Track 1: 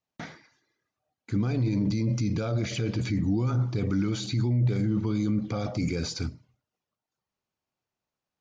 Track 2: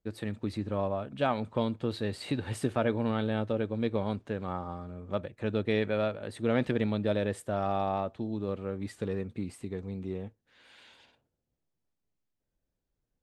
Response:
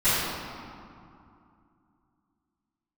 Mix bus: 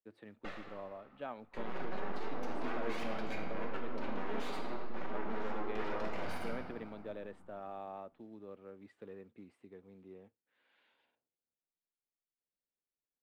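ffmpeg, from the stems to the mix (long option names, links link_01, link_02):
-filter_complex "[0:a]aeval=exprs='abs(val(0))':channel_layout=same,flanger=delay=1.3:depth=4.2:regen=-2:speed=0.33:shape=sinusoidal,asoftclip=type=hard:threshold=-30.5dB,adelay=250,volume=0dB,asplit=2[link_01][link_02];[link_02]volume=-16dB[link_03];[1:a]acrusher=bits=7:mode=log:mix=0:aa=0.000001,volume=-14.5dB[link_04];[2:a]atrim=start_sample=2205[link_05];[link_03][link_05]afir=irnorm=-1:irlink=0[link_06];[link_01][link_04][link_06]amix=inputs=3:normalize=0,acrossover=split=210 3200:gain=0.178 1 0.126[link_07][link_08][link_09];[link_07][link_08][link_09]amix=inputs=3:normalize=0"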